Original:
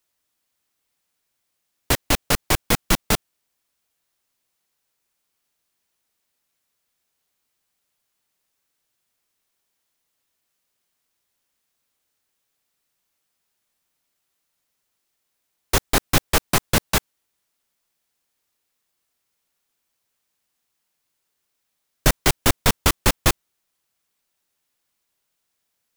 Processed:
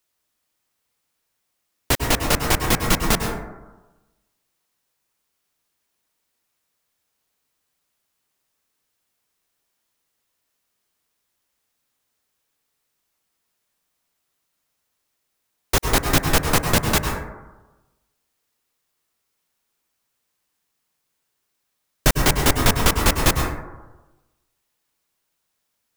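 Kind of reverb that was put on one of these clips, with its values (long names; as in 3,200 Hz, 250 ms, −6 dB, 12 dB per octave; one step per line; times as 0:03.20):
dense smooth reverb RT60 1.1 s, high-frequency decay 0.3×, pre-delay 90 ms, DRR 3 dB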